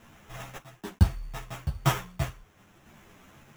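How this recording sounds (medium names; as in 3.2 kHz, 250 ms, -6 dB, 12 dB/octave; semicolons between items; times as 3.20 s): a quantiser's noise floor 10-bit, dither none; random-step tremolo; aliases and images of a low sample rate 4.5 kHz, jitter 0%; a shimmering, thickened sound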